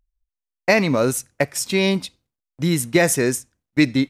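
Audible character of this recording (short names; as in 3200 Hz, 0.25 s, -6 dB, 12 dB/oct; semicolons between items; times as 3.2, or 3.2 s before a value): noise floor -86 dBFS; spectral tilt -4.5 dB/oct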